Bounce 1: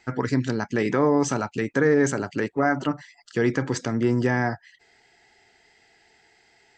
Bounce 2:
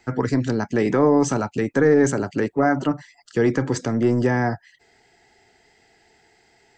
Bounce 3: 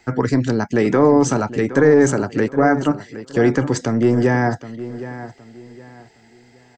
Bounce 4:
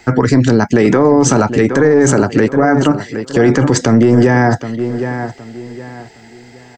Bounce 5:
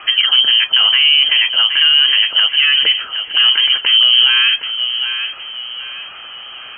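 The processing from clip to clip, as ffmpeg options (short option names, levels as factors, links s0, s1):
-filter_complex "[0:a]equalizer=f=2700:w=0.36:g=-6.5,acrossover=split=290[s0][s1];[s0]asoftclip=type=tanh:threshold=0.0562[s2];[s2][s1]amix=inputs=2:normalize=0,volume=1.88"
-filter_complex "[0:a]asplit=2[s0][s1];[s1]adelay=766,lowpass=f=4400:p=1,volume=0.2,asplit=2[s2][s3];[s3]adelay=766,lowpass=f=4400:p=1,volume=0.3,asplit=2[s4][s5];[s5]adelay=766,lowpass=f=4400:p=1,volume=0.3[s6];[s0][s2][s4][s6]amix=inputs=4:normalize=0,volume=1.5"
-af "alimiter=level_in=3.98:limit=0.891:release=50:level=0:latency=1,volume=0.891"
-af "aeval=exprs='val(0)+0.5*0.0447*sgn(val(0))':c=same,lowpass=f=2800:t=q:w=0.5098,lowpass=f=2800:t=q:w=0.6013,lowpass=f=2800:t=q:w=0.9,lowpass=f=2800:t=q:w=2.563,afreqshift=-3300,volume=0.794"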